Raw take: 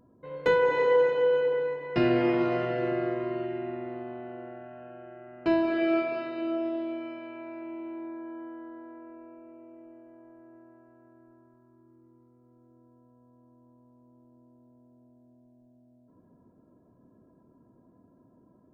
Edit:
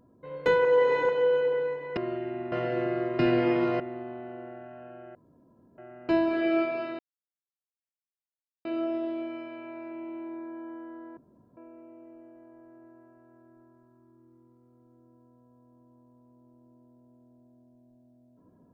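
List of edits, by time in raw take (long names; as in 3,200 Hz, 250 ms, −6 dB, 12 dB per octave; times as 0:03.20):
0:00.65–0:01.09: reverse
0:01.97–0:02.58: swap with 0:03.25–0:03.80
0:05.15: splice in room tone 0.63 s
0:06.36: splice in silence 1.66 s
0:08.88–0:09.28: fill with room tone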